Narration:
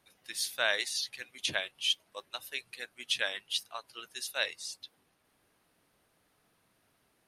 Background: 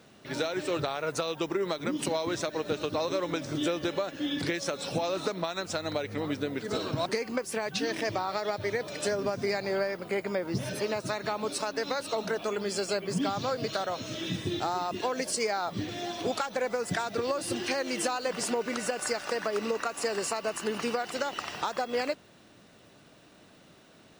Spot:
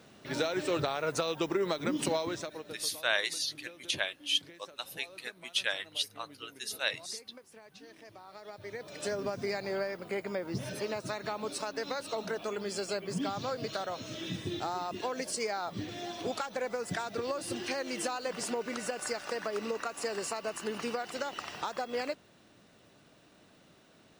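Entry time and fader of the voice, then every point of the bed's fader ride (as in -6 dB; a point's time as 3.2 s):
2.45 s, 0.0 dB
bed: 2.14 s -0.5 dB
3.06 s -22 dB
8.11 s -22 dB
9.12 s -4.5 dB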